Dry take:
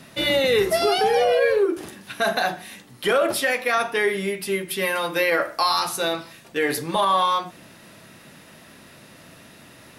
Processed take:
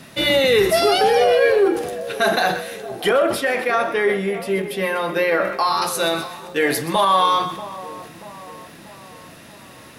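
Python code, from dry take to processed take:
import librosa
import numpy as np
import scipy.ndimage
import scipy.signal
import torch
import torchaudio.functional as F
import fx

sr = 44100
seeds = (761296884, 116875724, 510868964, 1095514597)

y = fx.high_shelf(x, sr, hz=2700.0, db=-11.0, at=(3.09, 5.82))
y = fx.dmg_crackle(y, sr, seeds[0], per_s=100.0, level_db=-44.0)
y = fx.echo_split(y, sr, split_hz=1000.0, low_ms=635, high_ms=126, feedback_pct=52, wet_db=-14.0)
y = fx.sustainer(y, sr, db_per_s=79.0)
y = y * librosa.db_to_amplitude(3.5)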